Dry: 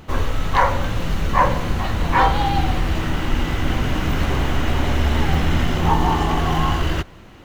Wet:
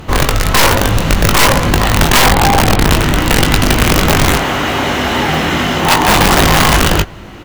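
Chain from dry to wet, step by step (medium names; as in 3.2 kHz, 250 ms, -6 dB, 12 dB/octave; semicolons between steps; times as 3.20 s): 4.36–6.08 s: high-pass 370 Hz 6 dB/octave; Chebyshev shaper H 5 -10 dB, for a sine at -3.5 dBFS; 2.20–2.93 s: distance through air 270 m; integer overflow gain 7.5 dB; doubling 20 ms -7 dB; trim +3 dB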